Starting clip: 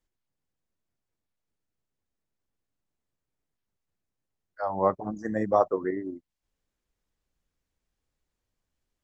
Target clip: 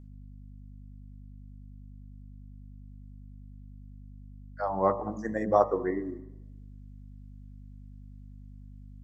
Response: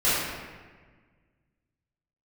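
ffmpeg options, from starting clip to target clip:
-filter_complex "[0:a]aeval=exprs='val(0)+0.00562*(sin(2*PI*50*n/s)+sin(2*PI*2*50*n/s)/2+sin(2*PI*3*50*n/s)/3+sin(2*PI*4*50*n/s)/4+sin(2*PI*5*50*n/s)/5)':c=same,bandreject=f=53.57:t=h:w=4,bandreject=f=107.14:t=h:w=4,bandreject=f=160.71:t=h:w=4,bandreject=f=214.28:t=h:w=4,bandreject=f=267.85:t=h:w=4,bandreject=f=321.42:t=h:w=4,bandreject=f=374.99:t=h:w=4,bandreject=f=428.56:t=h:w=4,bandreject=f=482.13:t=h:w=4,bandreject=f=535.7:t=h:w=4,bandreject=f=589.27:t=h:w=4,bandreject=f=642.84:t=h:w=4,bandreject=f=696.41:t=h:w=4,bandreject=f=749.98:t=h:w=4,bandreject=f=803.55:t=h:w=4,bandreject=f=857.12:t=h:w=4,bandreject=f=910.69:t=h:w=4,bandreject=f=964.26:t=h:w=4,bandreject=f=1.01783k:t=h:w=4,bandreject=f=1.0714k:t=h:w=4,bandreject=f=1.12497k:t=h:w=4,bandreject=f=1.17854k:t=h:w=4,bandreject=f=1.23211k:t=h:w=4,bandreject=f=1.28568k:t=h:w=4,asplit=2[a][b];[1:a]atrim=start_sample=2205,asetrate=70560,aresample=44100,adelay=99[c];[b][c]afir=irnorm=-1:irlink=0,volume=-33dB[d];[a][d]amix=inputs=2:normalize=0"

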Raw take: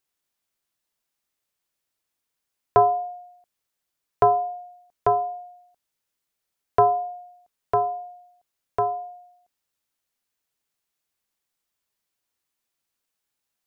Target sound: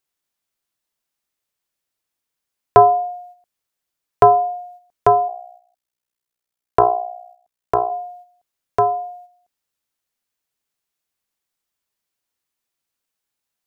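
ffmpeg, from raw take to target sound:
-filter_complex "[0:a]agate=range=-7dB:threshold=-49dB:ratio=16:detection=peak,asplit=3[a][b][c];[a]afade=t=out:st=5.27:d=0.02[d];[b]tremolo=f=61:d=0.889,afade=t=in:st=5.27:d=0.02,afade=t=out:st=7.9:d=0.02[e];[c]afade=t=in:st=7.9:d=0.02[f];[d][e][f]amix=inputs=3:normalize=0,volume=7dB"

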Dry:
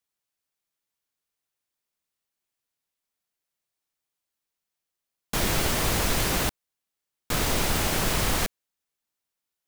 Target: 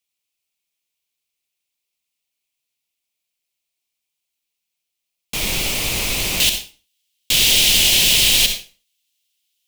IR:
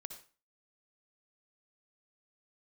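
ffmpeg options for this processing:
-filter_complex "[0:a]asetnsamples=n=441:p=0,asendcmd='6.4 highshelf g 14',highshelf=f=2k:t=q:w=3:g=6.5[a];[1:a]atrim=start_sample=2205[b];[a][b]afir=irnorm=-1:irlink=0,volume=3dB"

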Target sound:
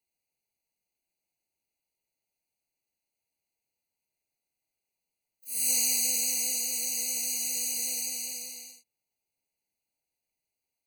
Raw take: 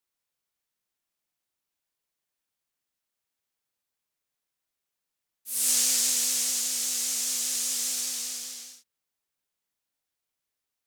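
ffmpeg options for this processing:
-filter_complex "[0:a]asplit=2[a][b];[b]asetrate=88200,aresample=44100,atempo=0.5,volume=-5dB[c];[a][c]amix=inputs=2:normalize=0,afftfilt=real='re*eq(mod(floor(b*sr/1024/980),2),0)':imag='im*eq(mod(floor(b*sr/1024/980),2),0)':win_size=1024:overlap=0.75"

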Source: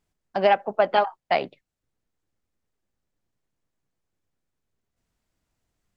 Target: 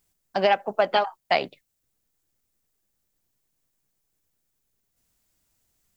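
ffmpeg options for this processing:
-af "aemphasis=mode=production:type=75kf,alimiter=limit=-7.5dB:level=0:latency=1:release=226"

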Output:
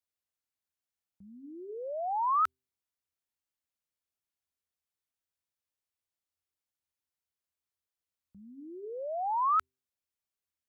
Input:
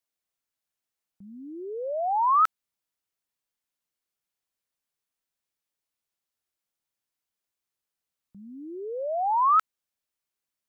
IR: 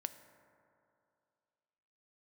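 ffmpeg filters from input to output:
-af "equalizer=f=81:w=3.9:g=14,bandreject=f=129.5:t=h:w=4,bandreject=f=259:t=h:w=4,bandreject=f=388.5:t=h:w=4,volume=-6.5dB"

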